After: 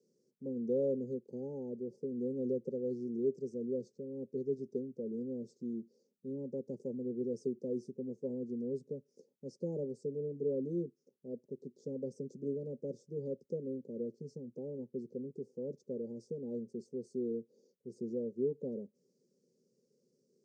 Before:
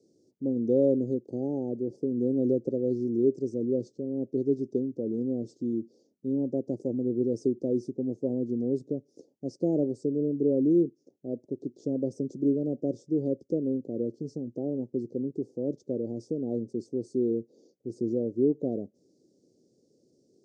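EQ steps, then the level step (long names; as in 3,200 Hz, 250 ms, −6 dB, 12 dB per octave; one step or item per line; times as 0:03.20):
phaser with its sweep stopped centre 460 Hz, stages 8
−6.5 dB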